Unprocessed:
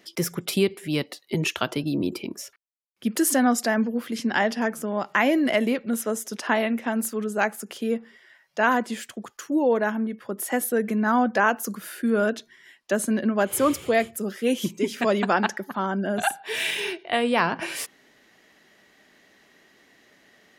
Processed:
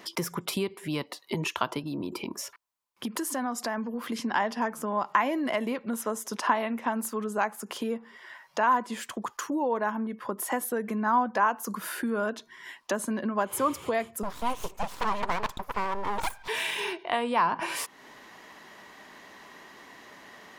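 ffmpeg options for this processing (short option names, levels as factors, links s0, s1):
-filter_complex "[0:a]asettb=1/sr,asplit=3[s0][s1][s2];[s0]atrim=end=1.794[s3];[s1]atrim=start=1.79:end=4.04,asetpts=PTS-STARTPTS,afade=t=in:d=0.004:c=qsin,afade=t=out:st=2.246:d=0.004:c=qsin,acompressor=threshold=0.0282:ratio=2:attack=3.2:release=140:knee=1:detection=peak[s4];[s2]atrim=start=4.036[s5];[s3][s4]acrossfade=d=0.004:c1=hsin:c2=qsin[s6];[s6][s5]acrossfade=d=0.004:c1=qsin:c2=hsin,asettb=1/sr,asplit=3[s7][s8][s9];[s7]atrim=end=14.234[s10];[s8]atrim=start=14.23:end=16.48,asetpts=PTS-STARTPTS,afade=t=in:d=0.004:c=qsin,afade=t=out:st=2.246:d=0.004:c=qsin,aeval=exprs='abs(val(0))':c=same[s11];[s9]atrim=start=16.476[s12];[s10][s11]acrossfade=d=0.004:c1=hsin:c2=qsin[s13];[s13][s12]acrossfade=d=0.004:c1=qsin:c2=hsin,acompressor=threshold=0.00891:ratio=2.5,equalizer=f=1000:w=2.6:g=13.5,volume=2"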